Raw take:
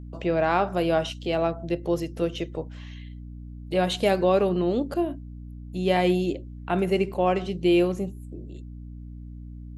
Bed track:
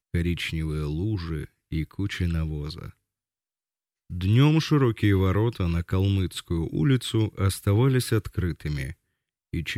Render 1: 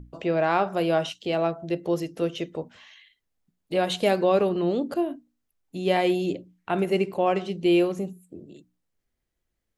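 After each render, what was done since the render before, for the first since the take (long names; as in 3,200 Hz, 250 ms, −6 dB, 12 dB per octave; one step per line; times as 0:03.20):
mains-hum notches 60/120/180/240/300 Hz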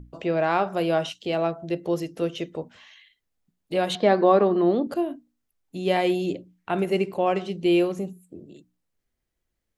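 0:03.95–0:04.87: loudspeaker in its box 180–4,500 Hz, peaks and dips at 210 Hz +6 dB, 350 Hz +5 dB, 710 Hz +6 dB, 1,100 Hz +7 dB, 1,800 Hz +5 dB, 2,700 Hz −9 dB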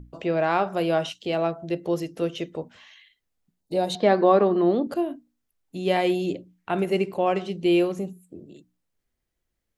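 0:03.61–0:04.00: gain on a spectral selection 1,000–3,600 Hz −10 dB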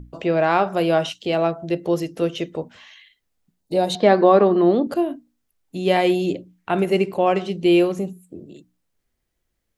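level +4.5 dB
brickwall limiter −3 dBFS, peak gain reduction 1.5 dB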